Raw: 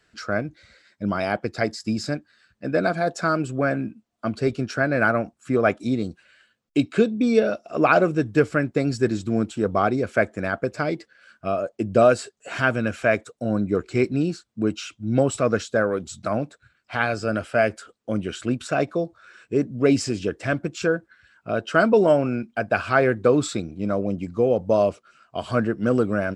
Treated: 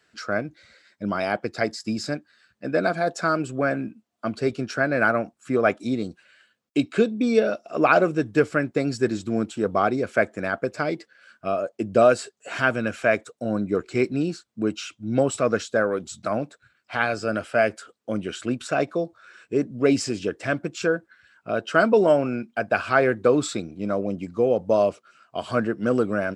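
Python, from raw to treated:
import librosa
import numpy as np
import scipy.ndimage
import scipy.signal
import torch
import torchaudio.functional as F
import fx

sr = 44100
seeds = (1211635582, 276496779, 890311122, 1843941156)

y = fx.highpass(x, sr, hz=180.0, slope=6)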